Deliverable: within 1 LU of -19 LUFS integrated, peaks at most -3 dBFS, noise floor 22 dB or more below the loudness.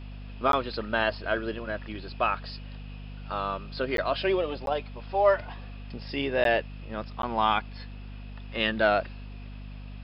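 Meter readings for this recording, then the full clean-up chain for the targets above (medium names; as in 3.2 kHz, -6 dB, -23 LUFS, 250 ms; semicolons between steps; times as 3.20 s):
dropouts 5; longest dropout 12 ms; hum 50 Hz; highest harmonic 250 Hz; hum level -38 dBFS; loudness -28.0 LUFS; peak level -9.5 dBFS; loudness target -19.0 LUFS
-> interpolate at 0.52/3.97/4.66/6.44/7.22 s, 12 ms; hum notches 50/100/150/200/250 Hz; trim +9 dB; peak limiter -3 dBFS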